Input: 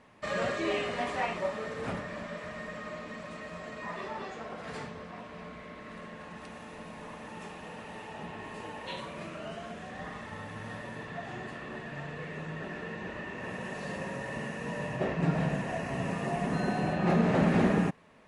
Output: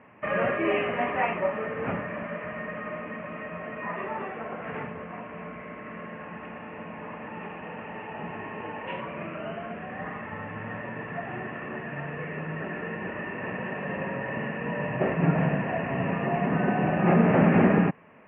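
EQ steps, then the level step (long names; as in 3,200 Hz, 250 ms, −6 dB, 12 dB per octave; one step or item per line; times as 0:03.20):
high-pass filter 93 Hz
Butterworth low-pass 2,800 Hz 72 dB per octave
+5.5 dB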